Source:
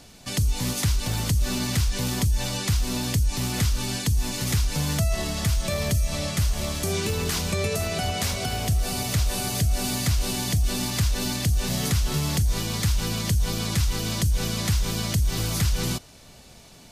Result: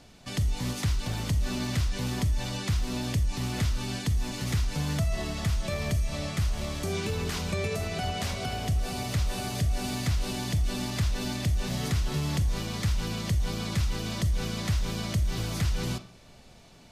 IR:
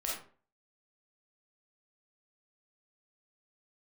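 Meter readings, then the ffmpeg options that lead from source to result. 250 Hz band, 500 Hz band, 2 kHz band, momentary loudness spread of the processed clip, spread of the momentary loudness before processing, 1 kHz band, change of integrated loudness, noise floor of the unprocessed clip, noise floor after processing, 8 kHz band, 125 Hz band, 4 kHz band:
-3.5 dB, -4.0 dB, -4.5 dB, 2 LU, 2 LU, -3.5 dB, -5.0 dB, -49 dBFS, -52 dBFS, -10.0 dB, -4.0 dB, -6.5 dB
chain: -filter_complex "[0:a]highshelf=f=8.1k:g=-9.5,asplit=2[a][b];[1:a]atrim=start_sample=2205,lowpass=4.4k[c];[b][c]afir=irnorm=-1:irlink=0,volume=-11dB[d];[a][d]amix=inputs=2:normalize=0,volume=-5.5dB"

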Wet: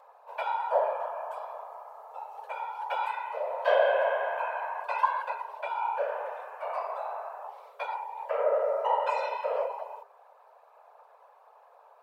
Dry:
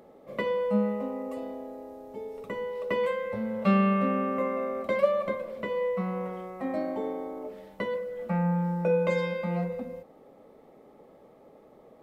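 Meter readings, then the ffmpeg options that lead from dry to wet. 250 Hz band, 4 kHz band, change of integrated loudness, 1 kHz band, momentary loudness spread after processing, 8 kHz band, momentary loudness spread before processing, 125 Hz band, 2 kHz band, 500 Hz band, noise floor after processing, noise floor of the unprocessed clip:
under -40 dB, +0.5 dB, -1.5 dB, +5.5 dB, 16 LU, n/a, 15 LU, under -40 dB, +1.5 dB, -1.5 dB, -58 dBFS, -55 dBFS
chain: -af "afftfilt=real='hypot(re,im)*cos(2*PI*random(0))':imag='hypot(re,im)*sin(2*PI*random(1))':win_size=512:overlap=0.75,lowshelf=f=240:g=7,afreqshift=410,volume=1.5dB"

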